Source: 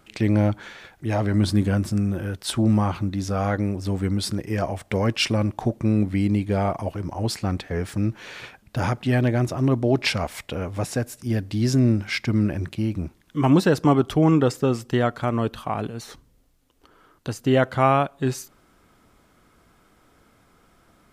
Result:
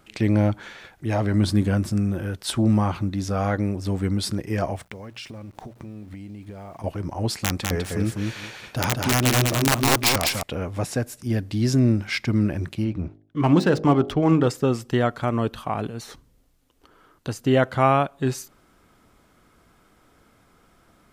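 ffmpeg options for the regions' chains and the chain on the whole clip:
-filter_complex "[0:a]asettb=1/sr,asplit=3[a][b][c];[a]atrim=end=4.764[d];[b]atrim=start=4.76:end=6.84,asetpts=PTS-STARTPTS,afade=t=in:d=0.004:c=qsin,afade=t=out:st=2.076:d=0.004:c=qsin,acompressor=threshold=-34dB:ratio=12:attack=3.2:release=140:knee=1:detection=peak,aeval=exprs='val(0)*gte(abs(val(0)),0.00211)':c=same,bandreject=f=60:t=h:w=6,bandreject=f=120:t=h:w=6,bandreject=f=180:t=h:w=6[e];[c]atrim=start=6.836[f];[d][e]acrossfade=d=0.004:c1=hsin:c2=qsin[g];[g][f]acrossfade=d=0.004:c1=qsin:c2=hsin,asettb=1/sr,asplit=3[h][i][j];[h]atrim=end=7.394[k];[i]atrim=start=7.39:end=10.43,asetpts=PTS-STARTPTS,afade=t=in:d=0.004:c=qsin,afade=t=out:st=3.036:d=0.004:c=qsin,aeval=exprs='(mod(4.47*val(0)+1,2)-1)/4.47':c=same,bass=f=250:g=-2,treble=f=4k:g=5,aecho=1:1:201|402|603:0.708|0.113|0.0181,atrim=end_sample=134064[l];[j]atrim=start=10.426[m];[k][l]acrossfade=d=0.004:c1=hsin:c2=qsin[n];[n][m]acrossfade=d=0.004:c1=qsin:c2=hsin,asettb=1/sr,asplit=3[o][p][q];[o]atrim=end=12.844[r];[p]atrim=start=12.84:end=14.47,asetpts=PTS-STARTPTS,afade=t=in:d=0.004:c=qsin,afade=t=out:st=1.626:d=0.004:c=qsin,agate=range=-33dB:threshold=-48dB:ratio=3:release=100:detection=peak,bandreject=f=51.91:t=h:w=4,bandreject=f=103.82:t=h:w=4,bandreject=f=155.73:t=h:w=4,bandreject=f=207.64:t=h:w=4,bandreject=f=259.55:t=h:w=4,bandreject=f=311.46:t=h:w=4,bandreject=f=363.37:t=h:w=4,bandreject=f=415.28:t=h:w=4,bandreject=f=467.19:t=h:w=4,bandreject=f=519.1:t=h:w=4,bandreject=f=571.01:t=h:w=4,bandreject=f=622.92:t=h:w=4,bandreject=f=674.83:t=h:w=4,bandreject=f=726.74:t=h:w=4,bandreject=f=778.65:t=h:w=4,bandreject=f=830.56:t=h:w=4,adynamicsmooth=sensitivity=6:basefreq=3.5k[s];[q]atrim=start=14.466[t];[r][s]acrossfade=d=0.004:c1=hsin:c2=qsin[u];[u][t]acrossfade=d=0.004:c1=qsin:c2=hsin"

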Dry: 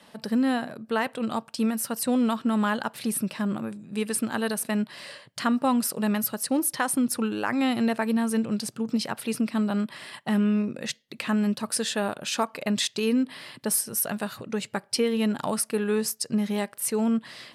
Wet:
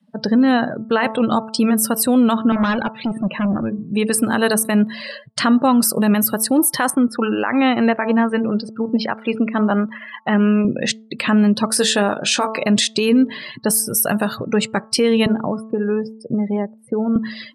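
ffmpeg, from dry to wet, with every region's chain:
-filter_complex "[0:a]asettb=1/sr,asplit=3[a][b][c];[a]atrim=end=2.524[d];[b]atrim=start=2.52:end=3.79,asetpts=PTS-STARTPTS,afade=t=in:d=0.004:c=qsin,afade=t=out:st=1.266:d=0.004:c=qsin,highpass=120,lowpass=3.2k,asoftclip=type=hard:threshold=-29.5dB[e];[c]atrim=start=3.786[f];[d][e]acrossfade=d=0.004:c1=hsin:c2=qsin[g];[g][f]acrossfade=d=0.004:c1=qsin:c2=hsin,asettb=1/sr,asplit=3[h][i][j];[h]atrim=end=6.904[k];[i]atrim=start=6.9:end=10.65,asetpts=PTS-STARTPTS,afade=t=in:d=0.004:c=qsin,afade=t=out:st=3.746:d=0.004:c=qsin,lowpass=2.3k,aemphasis=mode=production:type=bsi,aeval=exprs='sgn(val(0))*max(abs(val(0))-0.00133,0)':c=same[l];[j]atrim=start=10.646[m];[k][l]acrossfade=d=0.004:c1=hsin:c2=qsin[n];[n][m]acrossfade=d=0.004:c1=qsin:c2=hsin,asettb=1/sr,asplit=3[o][p][q];[o]atrim=end=11.684[r];[p]atrim=start=11.68:end=12.62,asetpts=PTS-STARTPTS,afade=t=in:d=0.004:c=qsin,afade=t=out:st=0.936:d=0.004:c=qsin,highpass=150,asplit=2[s][t];[t]adelay=20,volume=-9dB[u];[s][u]amix=inputs=2:normalize=0,atrim=end_sample=41454[v];[q]atrim=start=12.616[w];[r][v]acrossfade=d=0.004:c1=hsin:c2=qsin[x];[x][w]acrossfade=d=0.004:c1=qsin:c2=hsin,asettb=1/sr,asplit=3[y][z][aa];[y]atrim=end=15.264[ab];[z]atrim=start=15.26:end=17.16,asetpts=PTS-STARTPTS,afade=t=in:d=0.004:c=qsin,afade=t=out:st=1.896:d=0.004:c=qsin,lowpass=f=2k:p=1,acrossover=split=240|640|1400[ac][ad][ae][af];[ac]acompressor=threshold=-40dB:ratio=3[ag];[ad]acompressor=threshold=-37dB:ratio=3[ah];[ae]acompressor=threshold=-50dB:ratio=3[ai];[af]acompressor=threshold=-53dB:ratio=3[aj];[ag][ah][ai][aj]amix=inputs=4:normalize=0[ak];[aa]atrim=start=17.156[al];[ab][ak]acrossfade=d=0.004:c1=hsin:c2=qsin[am];[am][al]acrossfade=d=0.004:c1=qsin:c2=hsin,afftdn=nr=35:nf=-42,bandreject=f=220.5:t=h:w=4,bandreject=f=441:t=h:w=4,bandreject=f=661.5:t=h:w=4,bandreject=f=882:t=h:w=4,bandreject=f=1.1025k:t=h:w=4,bandreject=f=1.323k:t=h:w=4,alimiter=level_in=20dB:limit=-1dB:release=50:level=0:latency=1,volume=-6.5dB"

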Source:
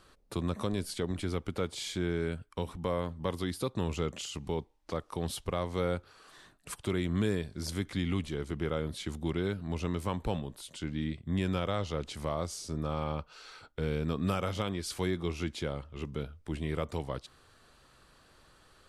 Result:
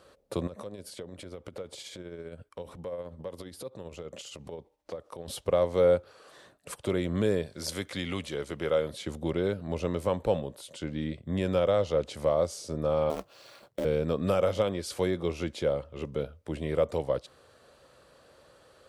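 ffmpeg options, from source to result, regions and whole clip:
-filter_complex "[0:a]asettb=1/sr,asplit=3[a][b][c];[a]atrim=end=0.474[d];[b]atrim=start=0.47:end=5.28,asetpts=PTS-STARTPTS,afade=t=in:d=0.004:c=qsin,afade=t=out:st=4.806:d=0.004:c=qsin,acompressor=threshold=-38dB:ratio=12:attack=3.2:release=140:knee=1:detection=peak,tremolo=f=15:d=0.44[e];[c]atrim=start=5.276[f];[d][e]acrossfade=d=0.004:c1=hsin:c2=qsin[g];[g][f]acrossfade=d=0.004:c1=qsin:c2=hsin,asettb=1/sr,asplit=3[h][i][j];[h]atrim=end=7.464[k];[i]atrim=start=7.46:end=8.93,asetpts=PTS-STARTPTS,afade=t=in:d=0.004:c=qsin,afade=t=out:st=1.466:d=0.004:c=qsin,highpass=49,tiltshelf=f=800:g=-5[l];[j]atrim=start=8.926[m];[k][l]acrossfade=d=0.004:c1=hsin:c2=qsin[n];[n][m]acrossfade=d=0.004:c1=qsin:c2=hsin,asettb=1/sr,asplit=3[o][p][q];[o]atrim=end=13.104[r];[p]atrim=start=13.1:end=13.85,asetpts=PTS-STARTPTS,afade=t=in:d=0.004:c=qsin,afade=t=out:st=0.746:d=0.004:c=qsin,bandreject=f=1.4k:w=6,acrusher=bits=2:mode=log:mix=0:aa=0.000001,aeval=exprs='val(0)*sin(2*PI*120*n/s)':c=same[s];[q]atrim=start=13.846[t];[r][s]acrossfade=d=0.004:c1=hsin:c2=qsin[u];[u][t]acrossfade=d=0.004:c1=qsin:c2=hsin,highpass=64,equalizer=f=540:t=o:w=0.63:g=13.5"

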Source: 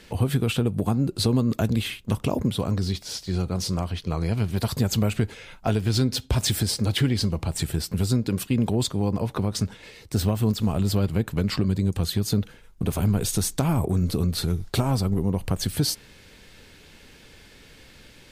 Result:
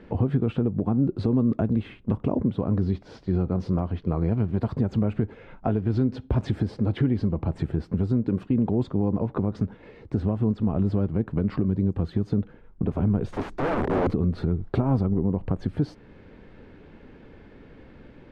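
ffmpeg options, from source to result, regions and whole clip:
-filter_complex "[0:a]asettb=1/sr,asplit=3[a][b][c];[a]atrim=end=13.324[d];[b]atrim=start=13.32:end=14.14,asetpts=PTS-STARTPTS,afade=t=in:d=0.004:c=qsin,afade=t=out:st=0.816:d=0.004:c=qsin,highshelf=f=7.4k:g=5,aeval=exprs='(mod(11.9*val(0)+1,2)-1)/11.9':c=same[e];[c]atrim=start=14.136[f];[d][e]acrossfade=d=0.004:c1=hsin:c2=qsin[g];[g][f]acrossfade=d=0.004:c1=qsin:c2=hsin,lowpass=1.3k,equalizer=f=280:t=o:w=1.5:g=5.5,alimiter=limit=-15.5dB:level=0:latency=1:release=369,volume=2dB"

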